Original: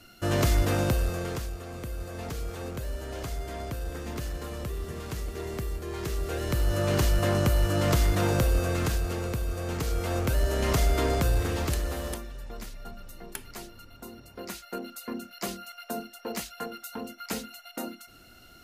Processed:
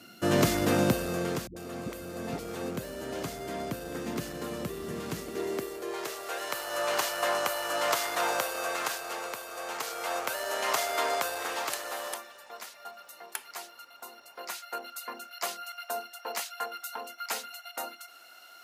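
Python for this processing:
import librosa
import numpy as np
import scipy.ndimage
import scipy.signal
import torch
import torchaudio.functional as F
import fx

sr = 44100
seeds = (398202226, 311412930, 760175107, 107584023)

y = fx.dmg_crackle(x, sr, seeds[0], per_s=170.0, level_db=-58.0)
y = fx.dispersion(y, sr, late='highs', ms=94.0, hz=320.0, at=(1.47, 2.39))
y = fx.filter_sweep_highpass(y, sr, from_hz=190.0, to_hz=810.0, start_s=5.16, end_s=6.31, q=1.4)
y = F.gain(torch.from_numpy(y), 1.5).numpy()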